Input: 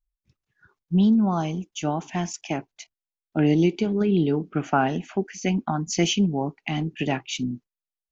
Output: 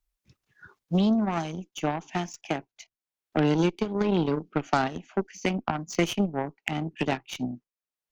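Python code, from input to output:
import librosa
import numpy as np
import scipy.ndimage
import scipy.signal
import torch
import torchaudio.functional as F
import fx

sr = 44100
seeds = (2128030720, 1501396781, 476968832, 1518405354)

y = fx.low_shelf(x, sr, hz=100.0, db=-7.5)
y = fx.cheby_harmonics(y, sr, harmonics=(4, 7), levels_db=(-34, -19), full_scale_db=-8.0)
y = fx.band_squash(y, sr, depth_pct=70)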